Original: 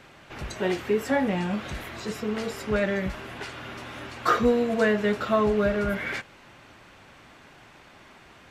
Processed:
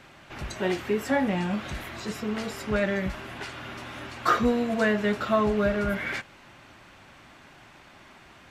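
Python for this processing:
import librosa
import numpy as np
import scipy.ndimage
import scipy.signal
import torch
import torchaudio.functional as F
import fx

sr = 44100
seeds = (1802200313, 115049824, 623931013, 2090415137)

y = fx.peak_eq(x, sr, hz=460.0, db=-6.0, octaves=0.25)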